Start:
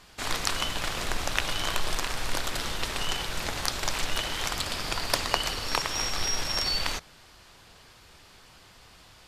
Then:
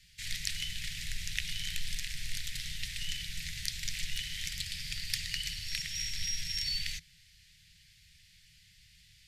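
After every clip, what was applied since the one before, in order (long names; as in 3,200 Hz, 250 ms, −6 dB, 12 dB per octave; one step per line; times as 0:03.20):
Chebyshev band-stop filter 170–1,900 Hz, order 4
level −5.5 dB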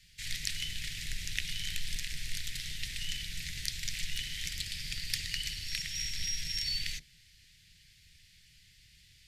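sub-octave generator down 2 octaves, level −5 dB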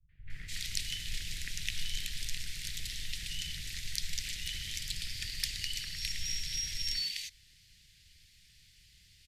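three-band delay without the direct sound lows, mids, highs 90/300 ms, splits 150/1,900 Hz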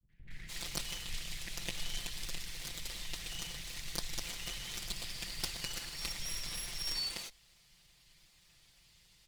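lower of the sound and its delayed copy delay 5.8 ms
level −1.5 dB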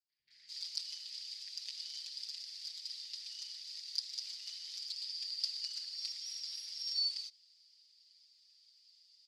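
resonant band-pass 4,800 Hz, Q 11
level +9.5 dB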